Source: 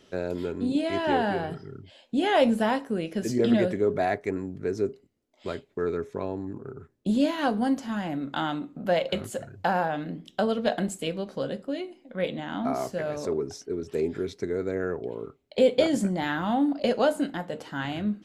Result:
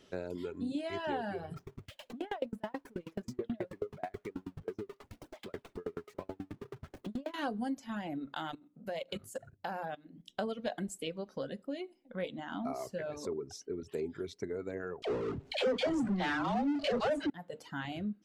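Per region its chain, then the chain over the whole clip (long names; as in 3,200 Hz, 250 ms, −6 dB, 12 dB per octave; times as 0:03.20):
0:01.56–0:07.34: converter with a step at zero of −30.5 dBFS + high-shelf EQ 3,900 Hz −11.5 dB + tremolo with a ramp in dB decaying 9.3 Hz, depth 31 dB
0:08.34–0:10.28: high-shelf EQ 8,400 Hz +9 dB + output level in coarse steps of 15 dB + mains-hum notches 60/120/180/240/300 Hz
0:15.02–0:17.30: all-pass dispersion lows, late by 89 ms, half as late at 520 Hz + power curve on the samples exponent 0.5 + high-frequency loss of the air 89 metres
whole clip: reverb reduction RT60 1.2 s; downward compressor 2 to 1, threshold −33 dBFS; level −4 dB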